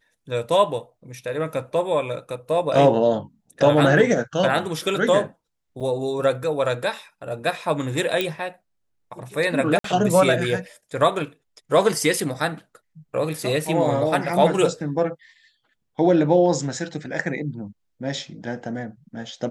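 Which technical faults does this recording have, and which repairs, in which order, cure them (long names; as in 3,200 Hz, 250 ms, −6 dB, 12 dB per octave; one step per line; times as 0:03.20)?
0:05.80–0:05.81: drop-out 6.6 ms
0:08.21: click −9 dBFS
0:09.79–0:09.84: drop-out 53 ms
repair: click removal
repair the gap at 0:05.80, 6.6 ms
repair the gap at 0:09.79, 53 ms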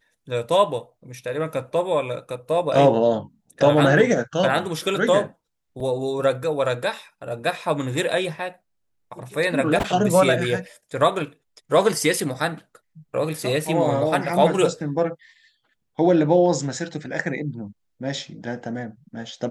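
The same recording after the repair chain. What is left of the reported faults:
0:08.21: click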